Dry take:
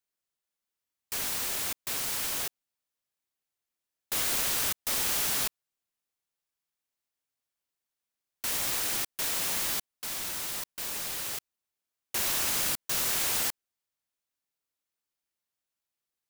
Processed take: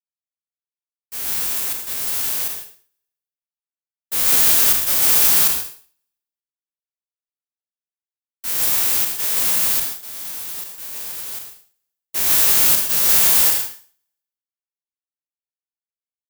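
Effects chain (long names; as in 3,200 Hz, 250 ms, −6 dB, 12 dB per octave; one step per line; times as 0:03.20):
peak hold with a decay on every bin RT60 1.04 s
high-shelf EQ 10,000 Hz +9.5 dB
reverb whose tail is shaped and stops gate 180 ms rising, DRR 3 dB
expander for the loud parts 2.5 to 1, over −41 dBFS
level +5 dB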